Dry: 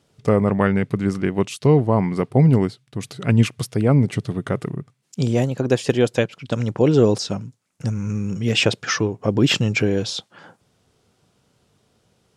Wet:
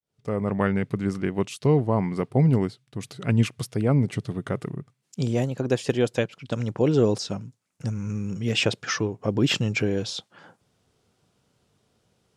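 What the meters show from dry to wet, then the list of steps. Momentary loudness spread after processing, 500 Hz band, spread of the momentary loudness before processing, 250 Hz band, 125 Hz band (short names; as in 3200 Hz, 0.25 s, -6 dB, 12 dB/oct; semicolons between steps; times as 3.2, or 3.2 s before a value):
11 LU, -5.5 dB, 11 LU, -5.0 dB, -5.0 dB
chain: opening faded in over 0.62 s; gain -5 dB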